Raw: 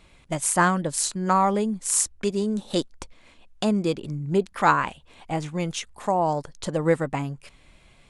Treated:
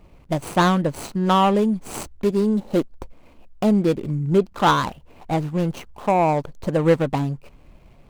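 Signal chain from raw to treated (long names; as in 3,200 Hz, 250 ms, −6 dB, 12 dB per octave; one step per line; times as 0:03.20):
running median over 25 samples
in parallel at −4.5 dB: soft clipping −24 dBFS, distortion −9 dB
on the sum: level +3 dB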